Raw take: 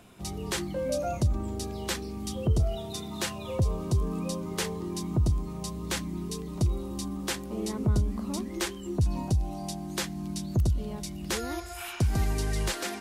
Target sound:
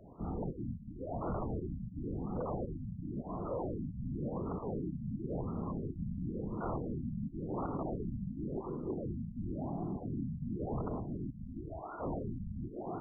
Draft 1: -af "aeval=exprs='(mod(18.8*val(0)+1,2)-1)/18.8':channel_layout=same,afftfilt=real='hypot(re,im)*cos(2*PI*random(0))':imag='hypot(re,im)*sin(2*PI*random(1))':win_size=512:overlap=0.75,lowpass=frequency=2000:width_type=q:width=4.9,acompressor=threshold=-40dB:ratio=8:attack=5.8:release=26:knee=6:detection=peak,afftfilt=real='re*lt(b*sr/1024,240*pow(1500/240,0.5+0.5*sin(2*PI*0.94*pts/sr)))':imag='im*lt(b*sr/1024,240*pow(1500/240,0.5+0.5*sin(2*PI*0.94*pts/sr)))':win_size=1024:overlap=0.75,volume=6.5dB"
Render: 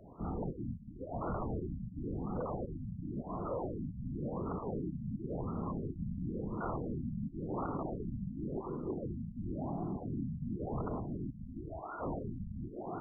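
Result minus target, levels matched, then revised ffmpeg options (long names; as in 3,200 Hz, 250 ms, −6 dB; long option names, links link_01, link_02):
2,000 Hz band +4.5 dB
-af "aeval=exprs='(mod(18.8*val(0)+1,2)-1)/18.8':channel_layout=same,afftfilt=real='hypot(re,im)*cos(2*PI*random(0))':imag='hypot(re,im)*sin(2*PI*random(1))':win_size=512:overlap=0.75,acompressor=threshold=-40dB:ratio=8:attack=5.8:release=26:knee=6:detection=peak,afftfilt=real='re*lt(b*sr/1024,240*pow(1500/240,0.5+0.5*sin(2*PI*0.94*pts/sr)))':imag='im*lt(b*sr/1024,240*pow(1500/240,0.5+0.5*sin(2*PI*0.94*pts/sr)))':win_size=1024:overlap=0.75,volume=6.5dB"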